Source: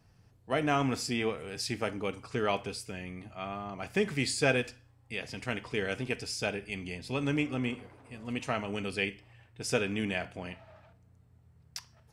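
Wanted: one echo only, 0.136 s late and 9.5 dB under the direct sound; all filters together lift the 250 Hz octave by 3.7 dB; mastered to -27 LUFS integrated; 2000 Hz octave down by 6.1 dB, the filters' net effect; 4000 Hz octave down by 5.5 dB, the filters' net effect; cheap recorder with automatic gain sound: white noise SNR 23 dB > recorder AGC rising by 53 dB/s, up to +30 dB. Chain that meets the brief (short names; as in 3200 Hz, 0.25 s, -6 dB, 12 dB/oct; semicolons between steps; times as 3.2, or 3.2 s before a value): bell 250 Hz +4.5 dB; bell 2000 Hz -6.5 dB; bell 4000 Hz -5.5 dB; echo 0.136 s -9.5 dB; white noise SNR 23 dB; recorder AGC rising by 53 dB/s, up to +30 dB; gain +2.5 dB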